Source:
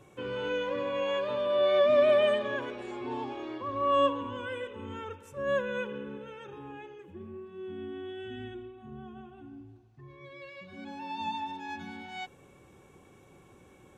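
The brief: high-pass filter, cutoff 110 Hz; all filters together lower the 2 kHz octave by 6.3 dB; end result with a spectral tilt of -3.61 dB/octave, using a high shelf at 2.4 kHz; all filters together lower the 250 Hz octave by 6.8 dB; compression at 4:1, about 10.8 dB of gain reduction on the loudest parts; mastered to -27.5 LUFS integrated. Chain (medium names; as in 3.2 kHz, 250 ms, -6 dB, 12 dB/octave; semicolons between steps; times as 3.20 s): high-pass 110 Hz; peaking EQ 250 Hz -8.5 dB; peaking EQ 2 kHz -4.5 dB; treble shelf 2.4 kHz -8 dB; compression 4:1, threshold -35 dBFS; trim +13 dB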